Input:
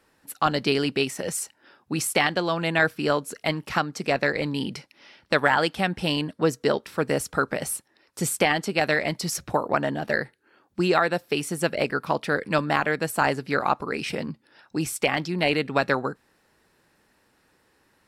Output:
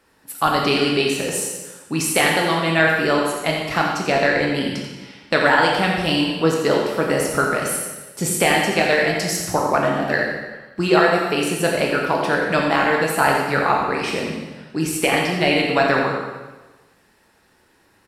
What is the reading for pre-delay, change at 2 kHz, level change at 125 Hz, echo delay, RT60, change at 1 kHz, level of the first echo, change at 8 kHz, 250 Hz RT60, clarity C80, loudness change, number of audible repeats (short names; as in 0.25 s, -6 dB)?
6 ms, +6.5 dB, +4.5 dB, 86 ms, 1.2 s, +6.5 dB, -8.0 dB, +6.5 dB, 1.2 s, 3.0 dB, +6.0 dB, 1